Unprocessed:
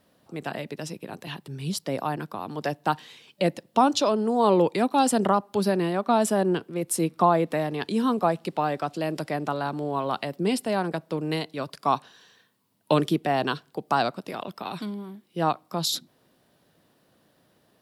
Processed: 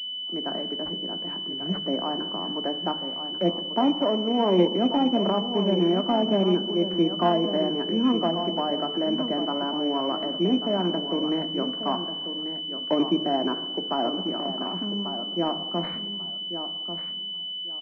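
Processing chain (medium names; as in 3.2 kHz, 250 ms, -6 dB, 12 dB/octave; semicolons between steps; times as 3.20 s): Chebyshev high-pass 180 Hz, order 5; low-pass that closes with the level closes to 960 Hz, closed at -18.5 dBFS; bass shelf 320 Hz +7 dB; in parallel at +2 dB: peak limiter -18 dBFS, peak gain reduction 10.5 dB; on the sum: feedback delay 1141 ms, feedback 20%, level -9.5 dB; on a send at -6.5 dB: reverberation RT60 1.4 s, pre-delay 3 ms; on the sum: class-D stage that switches slowly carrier 3 kHz; trim -8 dB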